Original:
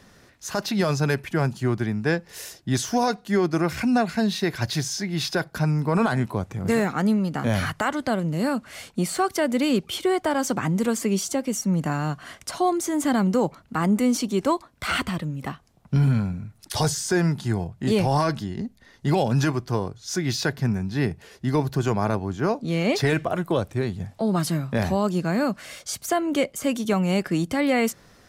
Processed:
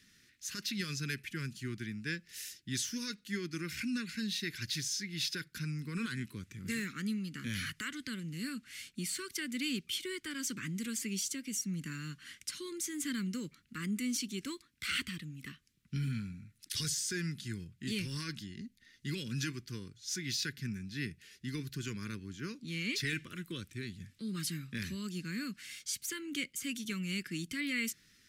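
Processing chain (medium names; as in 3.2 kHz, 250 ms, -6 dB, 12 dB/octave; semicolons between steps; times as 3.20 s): Chebyshev band-stop 260–2100 Hz, order 2; bass shelf 410 Hz -11.5 dB; trim -5.5 dB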